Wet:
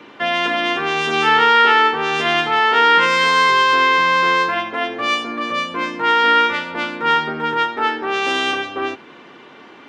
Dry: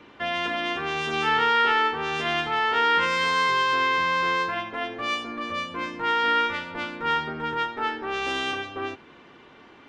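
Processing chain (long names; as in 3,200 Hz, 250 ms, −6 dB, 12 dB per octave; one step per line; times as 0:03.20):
high-pass filter 170 Hz 12 dB per octave
level +8.5 dB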